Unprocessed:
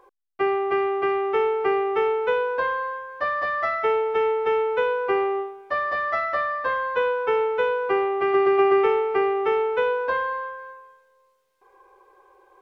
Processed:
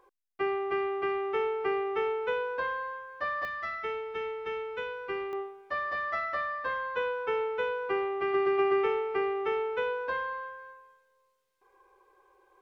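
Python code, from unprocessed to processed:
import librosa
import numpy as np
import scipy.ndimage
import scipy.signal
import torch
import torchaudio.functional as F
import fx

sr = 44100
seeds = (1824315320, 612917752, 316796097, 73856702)

y = fx.peak_eq(x, sr, hz=680.0, db=fx.steps((0.0, -4.5), (3.45, -13.5), (5.33, -5.0)), octaves=1.7)
y = y * 10.0 ** (-5.0 / 20.0)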